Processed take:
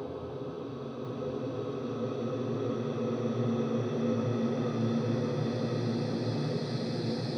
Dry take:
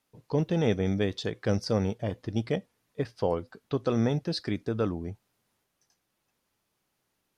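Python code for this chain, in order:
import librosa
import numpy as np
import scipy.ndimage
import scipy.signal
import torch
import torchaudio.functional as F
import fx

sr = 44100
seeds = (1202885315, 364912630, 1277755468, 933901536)

y = fx.paulstretch(x, sr, seeds[0], factor=11.0, window_s=1.0, from_s=3.57)
y = y + 10.0 ** (-4.0 / 20.0) * np.pad(y, (int(1050 * sr / 1000.0), 0))[:len(y)]
y = y * 10.0 ** (-5.5 / 20.0)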